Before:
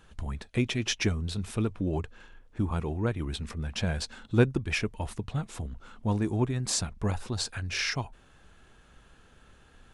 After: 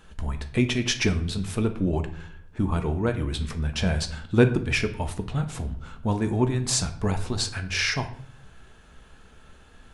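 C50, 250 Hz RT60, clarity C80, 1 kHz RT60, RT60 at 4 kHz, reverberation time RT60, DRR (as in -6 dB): 12.5 dB, 0.80 s, 16.0 dB, 0.55 s, 0.45 s, 0.60 s, 6.5 dB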